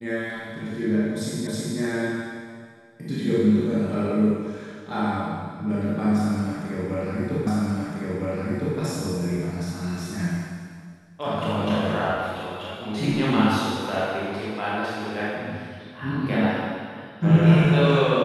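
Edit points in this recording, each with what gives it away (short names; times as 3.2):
1.47 repeat of the last 0.32 s
7.47 repeat of the last 1.31 s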